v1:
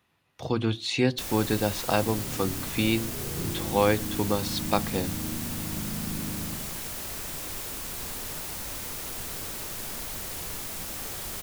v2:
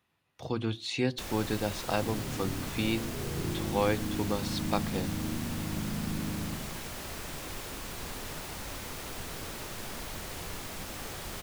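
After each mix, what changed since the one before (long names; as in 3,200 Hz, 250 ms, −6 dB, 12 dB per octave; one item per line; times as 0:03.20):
speech −5.5 dB
first sound: add high-shelf EQ 6,300 Hz −11 dB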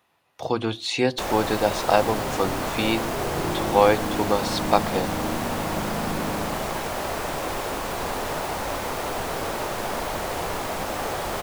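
speech: add high-shelf EQ 2,700 Hz +9.5 dB
first sound +5.5 dB
master: add parametric band 720 Hz +13 dB 2.3 octaves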